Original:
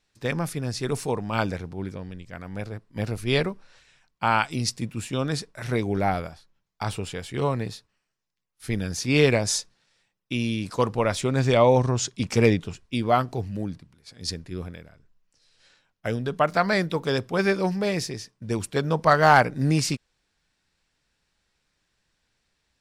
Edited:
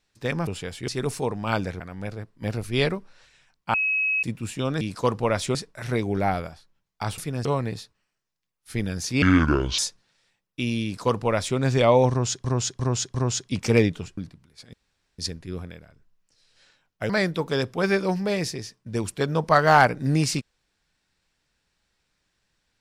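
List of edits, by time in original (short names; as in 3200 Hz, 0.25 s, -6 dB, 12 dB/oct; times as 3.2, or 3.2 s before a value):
0.47–0.74 swap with 6.98–7.39
1.66–2.34 cut
4.28–4.77 bleep 2560 Hz -20.5 dBFS
9.16–9.51 speed 62%
10.56–11.3 copy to 5.35
11.82–12.17 loop, 4 plays
12.85–13.66 cut
14.22 insert room tone 0.45 s
16.13–16.65 cut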